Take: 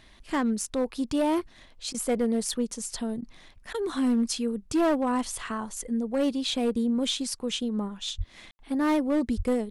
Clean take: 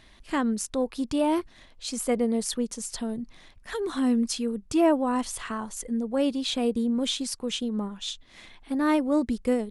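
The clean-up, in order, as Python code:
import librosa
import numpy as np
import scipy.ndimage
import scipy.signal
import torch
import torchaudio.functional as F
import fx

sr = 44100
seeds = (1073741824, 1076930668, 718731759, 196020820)

y = fx.fix_declip(x, sr, threshold_db=-19.5)
y = fx.highpass(y, sr, hz=140.0, slope=24, at=(8.17, 8.29), fade=0.02)
y = fx.highpass(y, sr, hz=140.0, slope=24, at=(9.36, 9.48), fade=0.02)
y = fx.fix_ambience(y, sr, seeds[0], print_start_s=3.24, print_end_s=3.74, start_s=8.51, end_s=8.59)
y = fx.fix_interpolate(y, sr, at_s=(1.93, 3.21, 3.73), length_ms=12.0)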